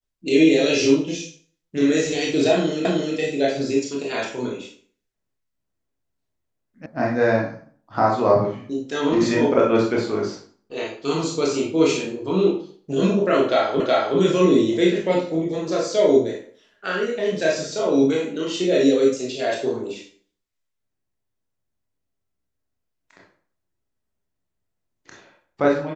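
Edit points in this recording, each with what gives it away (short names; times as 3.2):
2.85 repeat of the last 0.31 s
6.86 sound cut off
13.8 repeat of the last 0.37 s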